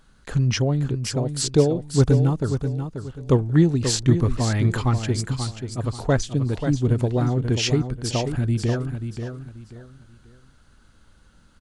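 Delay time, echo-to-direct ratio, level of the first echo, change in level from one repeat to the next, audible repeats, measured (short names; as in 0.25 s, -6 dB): 0.535 s, -7.5 dB, -8.0 dB, -10.5 dB, 3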